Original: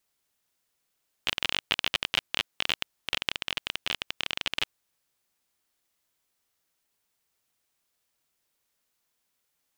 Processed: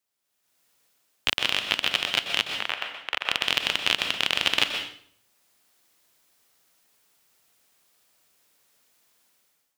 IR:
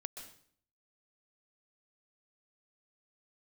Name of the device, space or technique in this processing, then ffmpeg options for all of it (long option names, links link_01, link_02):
far laptop microphone: -filter_complex "[0:a]asettb=1/sr,asplit=3[link_01][link_02][link_03];[link_01]atrim=end=2.494[link_04];[link_02]atrim=start=2.49:end=3.31,asetpts=PTS-STARTPTS,afade=type=in:duration=0.004:curve=qsin,afade=type=out:start_time=0.816:duration=0.004:curve=qsin,acrossover=split=540 2400:gain=0.178 1 0.178[link_05][link_06][link_07];[link_05][link_06][link_07]amix=inputs=3:normalize=0[link_08];[link_03]atrim=start=3.306[link_09];[link_04][link_08]acrossfade=duration=0.004:curve1=hsin:curve2=qsin[link_10];[link_10][link_09]acrossfade=duration=0.004:curve1=qsin:curve2=hsin[link_11];[1:a]atrim=start_sample=2205[link_12];[link_11][link_12]afir=irnorm=-1:irlink=0,highpass=frequency=120:poles=1,dynaudnorm=framelen=210:gausssize=5:maxgain=16dB,volume=-1dB"